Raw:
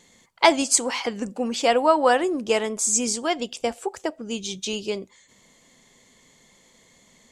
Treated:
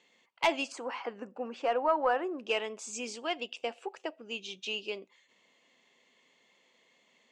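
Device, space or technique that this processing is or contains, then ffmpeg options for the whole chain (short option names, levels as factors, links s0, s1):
intercom: -filter_complex "[0:a]highpass=330,lowpass=4000,equalizer=f=2700:t=o:w=0.3:g=11,asoftclip=type=tanh:threshold=0.376,asettb=1/sr,asplit=3[s0][s1][s2];[s0]atrim=end=0.724[s3];[s1]atrim=start=0.72:end=2.39,asetpts=PTS-STARTPTS,afade=t=in:d=0.004:c=qsin,afade=t=out:st=1.666:d=0.004:c=qsin,highshelf=f=2000:t=q:w=1.5:g=-9.5[s4];[s2]atrim=start=2.386[s5];[s3][s4]acrossfade=d=0.004:c1=hsin:c2=qsin[s6];[s6][s5]acrossfade=d=0.004:c1=qsin:c2=hsin,volume=0.355"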